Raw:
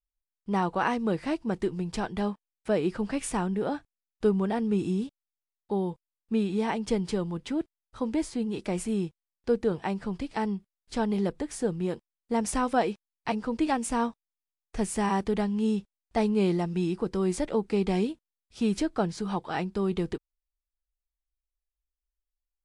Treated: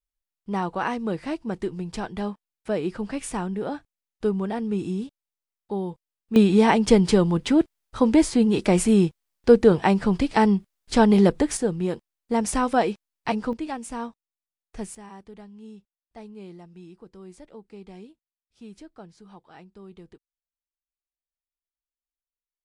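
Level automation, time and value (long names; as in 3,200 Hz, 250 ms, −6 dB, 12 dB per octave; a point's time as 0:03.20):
0 dB
from 0:06.36 +11 dB
from 0:11.57 +4 dB
from 0:13.53 −5 dB
from 0:14.95 −17 dB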